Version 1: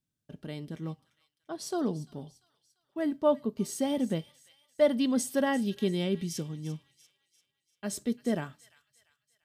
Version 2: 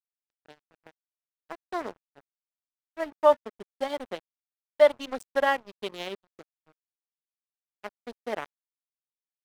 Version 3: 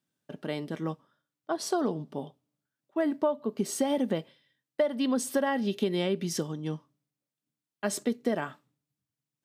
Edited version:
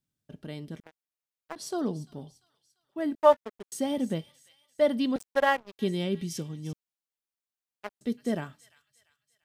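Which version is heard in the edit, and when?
1
0.80–1.56 s: from 2
3.15–3.72 s: from 2
5.16–5.79 s: from 2
6.73–8.01 s: from 2
not used: 3

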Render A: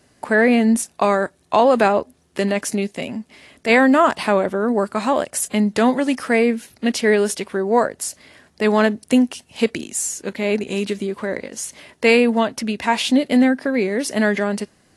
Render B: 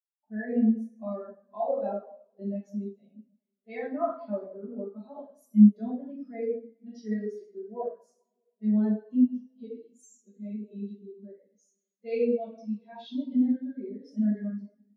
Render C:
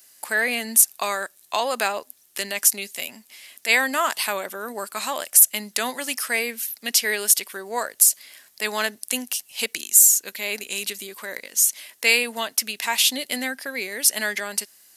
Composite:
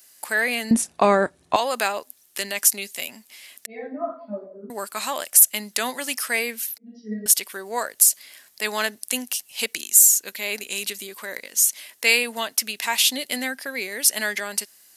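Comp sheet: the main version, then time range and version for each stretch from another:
C
0.71–1.56 s: from A
3.66–4.70 s: from B
6.78–7.26 s: from B

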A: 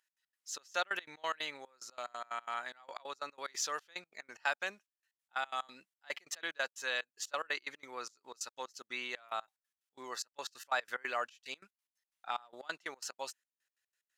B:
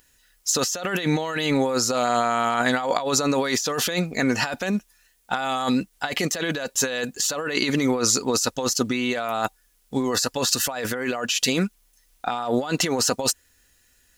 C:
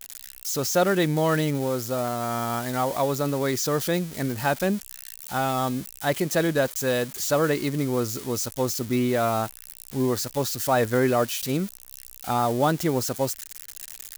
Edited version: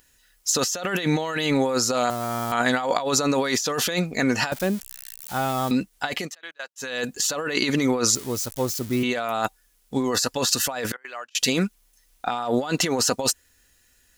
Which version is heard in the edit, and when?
B
2.10–2.52 s: from C
4.52–5.71 s: from C
6.22–6.89 s: from A, crossfade 0.24 s
8.15–9.03 s: from C
10.92–11.35 s: from A

